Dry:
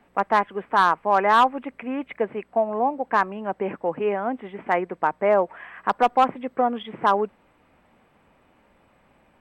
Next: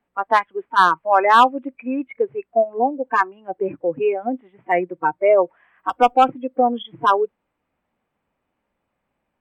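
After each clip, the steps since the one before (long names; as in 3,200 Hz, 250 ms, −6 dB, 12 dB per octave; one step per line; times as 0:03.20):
noise reduction from a noise print of the clip's start 21 dB
level +5 dB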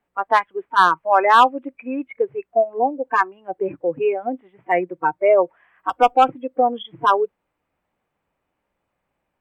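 parametric band 230 Hz −6 dB 0.37 octaves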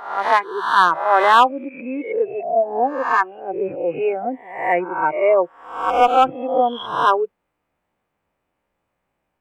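peak hold with a rise ahead of every peak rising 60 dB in 0.65 s
level −1 dB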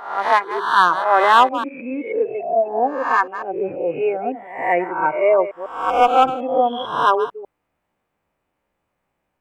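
delay that plays each chunk backwards 149 ms, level −12.5 dB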